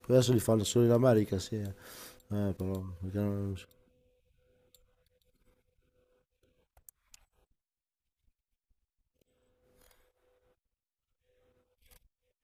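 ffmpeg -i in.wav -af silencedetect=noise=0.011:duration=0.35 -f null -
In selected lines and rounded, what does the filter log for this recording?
silence_start: 3.62
silence_end: 6.89 | silence_duration: 3.27
silence_start: 7.15
silence_end: 12.44 | silence_duration: 5.29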